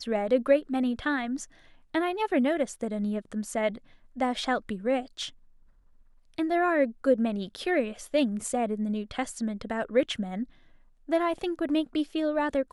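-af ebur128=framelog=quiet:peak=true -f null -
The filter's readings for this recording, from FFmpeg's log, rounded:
Integrated loudness:
  I:         -28.6 LUFS
  Threshold: -39.1 LUFS
Loudness range:
  LRA:         3.6 LU
  Threshold: -49.6 LUFS
  LRA low:   -31.6 LUFS
  LRA high:  -28.0 LUFS
True peak:
  Peak:      -10.5 dBFS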